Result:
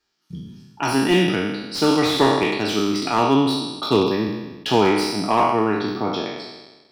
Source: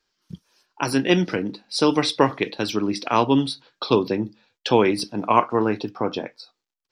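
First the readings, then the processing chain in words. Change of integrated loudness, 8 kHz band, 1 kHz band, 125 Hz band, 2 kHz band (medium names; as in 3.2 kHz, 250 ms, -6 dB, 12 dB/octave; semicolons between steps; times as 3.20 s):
+2.0 dB, +3.0 dB, +2.0 dB, +2.0 dB, +3.0 dB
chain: spectral sustain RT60 1.21 s; comb of notches 520 Hz; slew-rate limiter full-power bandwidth 280 Hz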